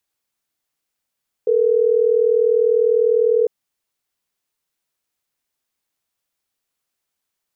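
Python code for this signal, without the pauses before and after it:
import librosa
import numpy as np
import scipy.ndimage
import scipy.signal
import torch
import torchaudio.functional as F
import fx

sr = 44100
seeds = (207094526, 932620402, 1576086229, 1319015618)

y = fx.call_progress(sr, length_s=3.12, kind='ringback tone', level_db=-15.5)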